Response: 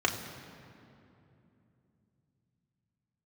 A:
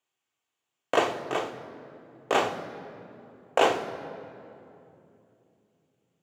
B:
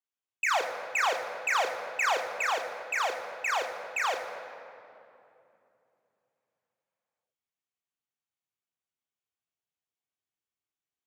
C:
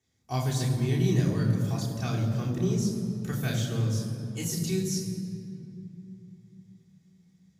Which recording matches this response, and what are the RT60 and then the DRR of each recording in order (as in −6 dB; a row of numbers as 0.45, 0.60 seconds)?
B; 2.9, 2.9, 2.9 seconds; 5.5, 0.5, −6.0 decibels